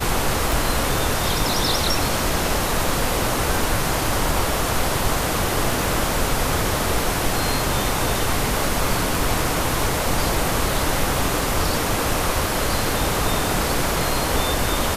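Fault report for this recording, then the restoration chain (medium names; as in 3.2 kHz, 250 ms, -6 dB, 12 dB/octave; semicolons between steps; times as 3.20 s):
0.52 s: pop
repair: de-click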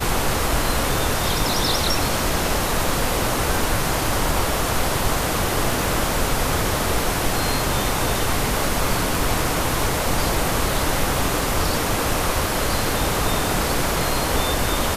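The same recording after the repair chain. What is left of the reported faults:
nothing left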